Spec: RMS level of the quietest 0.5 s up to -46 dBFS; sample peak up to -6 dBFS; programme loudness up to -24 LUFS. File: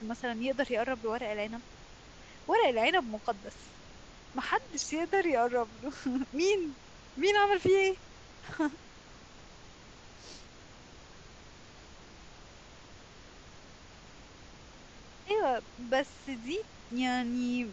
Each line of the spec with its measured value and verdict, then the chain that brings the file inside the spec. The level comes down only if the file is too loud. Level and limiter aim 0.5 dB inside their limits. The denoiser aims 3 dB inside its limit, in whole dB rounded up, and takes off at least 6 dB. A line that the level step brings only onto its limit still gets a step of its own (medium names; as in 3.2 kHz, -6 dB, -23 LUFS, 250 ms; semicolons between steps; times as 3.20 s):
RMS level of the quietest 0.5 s -52 dBFS: pass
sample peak -14.0 dBFS: pass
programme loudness -31.5 LUFS: pass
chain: none needed